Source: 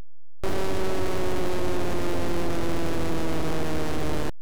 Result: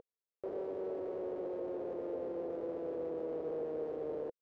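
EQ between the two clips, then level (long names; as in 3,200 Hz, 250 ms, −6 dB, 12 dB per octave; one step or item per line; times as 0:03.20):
low-pass with resonance 480 Hz, resonance Q 5
first difference
+7.5 dB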